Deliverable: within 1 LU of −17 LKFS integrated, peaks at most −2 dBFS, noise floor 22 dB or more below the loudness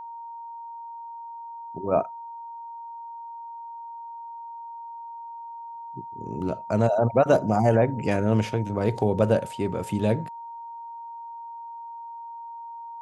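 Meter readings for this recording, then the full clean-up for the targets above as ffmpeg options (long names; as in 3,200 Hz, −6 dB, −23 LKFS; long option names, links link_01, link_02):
interfering tone 930 Hz; level of the tone −36 dBFS; integrated loudness −24.5 LKFS; sample peak −7.0 dBFS; target loudness −17.0 LKFS
→ -af "bandreject=frequency=930:width=30"
-af "volume=7.5dB,alimiter=limit=-2dB:level=0:latency=1"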